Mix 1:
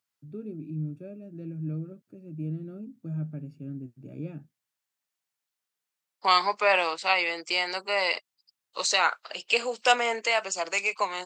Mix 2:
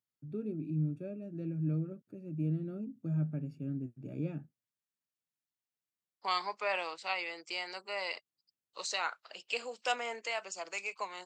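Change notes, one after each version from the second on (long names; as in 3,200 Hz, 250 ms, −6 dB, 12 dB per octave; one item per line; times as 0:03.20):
second voice −11.5 dB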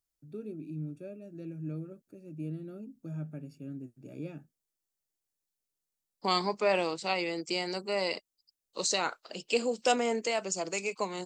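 second voice: remove high-pass filter 970 Hz 12 dB per octave
master: add bass and treble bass −7 dB, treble +11 dB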